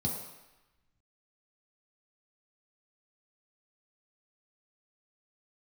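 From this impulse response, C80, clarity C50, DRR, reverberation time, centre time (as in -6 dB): 6.0 dB, 4.0 dB, -2.5 dB, 1.0 s, 47 ms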